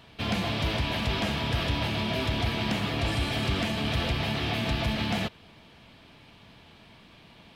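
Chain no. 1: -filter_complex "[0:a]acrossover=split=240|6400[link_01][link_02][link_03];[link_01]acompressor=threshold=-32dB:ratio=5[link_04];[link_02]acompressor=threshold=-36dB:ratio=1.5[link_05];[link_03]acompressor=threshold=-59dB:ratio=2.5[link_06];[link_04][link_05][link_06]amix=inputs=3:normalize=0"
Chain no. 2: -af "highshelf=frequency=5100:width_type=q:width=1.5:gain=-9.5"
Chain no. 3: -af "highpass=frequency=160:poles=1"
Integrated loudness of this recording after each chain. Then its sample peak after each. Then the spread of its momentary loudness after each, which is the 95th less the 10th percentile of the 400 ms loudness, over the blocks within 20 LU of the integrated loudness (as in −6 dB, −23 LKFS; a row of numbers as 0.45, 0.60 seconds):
−31.5, −27.5, −29.5 LKFS; −18.0, −16.5, −17.0 dBFS; 1, 1, 1 LU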